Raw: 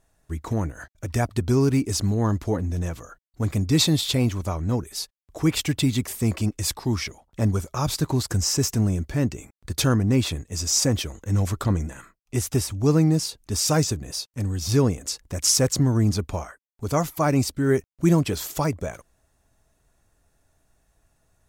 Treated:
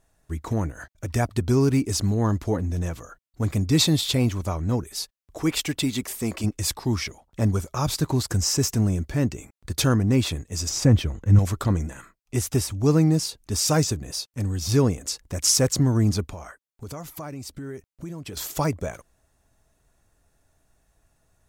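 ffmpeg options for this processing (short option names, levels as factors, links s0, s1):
-filter_complex "[0:a]asettb=1/sr,asplit=3[s0][s1][s2];[s0]atrim=end=5.414[s3];[s1]atrim=start=5.41:end=6.44,asetpts=PTS-STARTPTS,afade=t=in:d=0.004:c=qsin,afade=t=out:st=1.026:d=0.004:c=qsin,equalizer=f=100:t=o:w=1.5:g=-10.5[s4];[s2]atrim=start=6.436[s5];[s3][s4]acrossfade=d=0.004:c1=hsin:c2=qsin[s6];[s6][s5]acrossfade=d=0.004:c1=qsin:c2=hsin,asettb=1/sr,asplit=3[s7][s8][s9];[s7]atrim=end=10.694[s10];[s8]atrim=start=10.69:end=11.39,asetpts=PTS-STARTPTS,afade=t=in:d=0.004:c=qsin,afade=t=out:st=0.696:d=0.004:c=qsin,bass=f=250:g=8,treble=f=4000:g=-9[s11];[s9]atrim=start=11.386[s12];[s10][s11]acrossfade=d=0.004:c1=hsin:c2=qsin[s13];[s13][s12]acrossfade=d=0.004:c1=qsin:c2=hsin,asettb=1/sr,asplit=3[s14][s15][s16];[s14]atrim=end=16.254[s17];[s15]atrim=start=16.25:end=18.37,asetpts=PTS-STARTPTS,afade=t=in:d=0.004:c=qsin,afade=t=out:st=2.116:d=0.004:c=qsin,acompressor=threshold=0.0224:ratio=6:attack=3.2:release=140:knee=1:detection=peak[s18];[s16]atrim=start=18.366[s19];[s17][s18]acrossfade=d=0.004:c1=hsin:c2=qsin[s20];[s20][s19]acrossfade=d=0.004:c1=qsin:c2=hsin"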